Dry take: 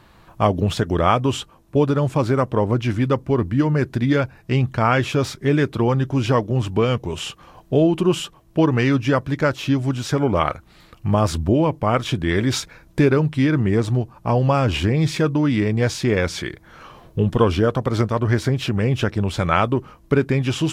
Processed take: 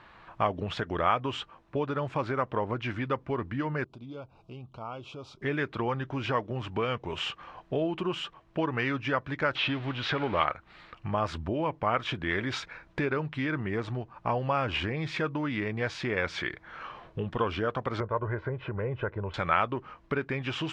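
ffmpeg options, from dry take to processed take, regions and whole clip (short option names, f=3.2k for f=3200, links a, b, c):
-filter_complex "[0:a]asettb=1/sr,asplit=3[a][b][c];[a]atrim=end=3.844[d];[b]atrim=start=3.84:end=5.42,asetpts=PTS-STARTPTS,afade=t=in:d=0.004:c=qsin,afade=t=out:st=1.576:d=0.004:c=qsin,equalizer=f=1.9k:w=1.1:g=-8,acompressor=threshold=-46dB:ratio=2:attack=3.2:release=140:knee=1:detection=peak,asuperstop=centerf=1800:order=4:qfactor=1.5[e];[c]atrim=start=5.416[f];[d][e]acrossfade=d=0.004:c1=hsin:c2=qsin[g];[g][f]acrossfade=d=0.004:c1=qsin:c2=hsin,asettb=1/sr,asplit=3[h][i][j];[h]atrim=end=9.554[k];[i]atrim=start=9.55:end=10.45,asetpts=PTS-STARTPTS,afade=t=in:d=0.004:c=qsin,afade=t=out:st=0.896:d=0.004:c=qsin,aeval=exprs='val(0)+0.5*0.0376*sgn(val(0))':c=same,lowpass=f=3.6k:t=q:w=1.8[l];[j]atrim=start=10.446[m];[k][l]acrossfade=d=0.004:c1=hsin:c2=qsin[n];[n][m]acrossfade=d=0.004:c1=qsin:c2=hsin,asettb=1/sr,asplit=3[o][p][q];[o]atrim=end=18.004[r];[p]atrim=start=18:end=19.34,asetpts=PTS-STARTPTS,afade=t=in:d=0.004:c=qsin,afade=t=out:st=1.336:d=0.004:c=qsin,lowpass=1.2k,aecho=1:1:2:0.56,atrim=end_sample=59094[s];[q]atrim=start=19.336[t];[r][s]acrossfade=d=0.004:c1=hsin:c2=qsin[u];[u][t]acrossfade=d=0.004:c1=qsin:c2=hsin,acompressor=threshold=-26dB:ratio=2,lowpass=2.3k,tiltshelf=f=640:g=-7.5,volume=-2.5dB"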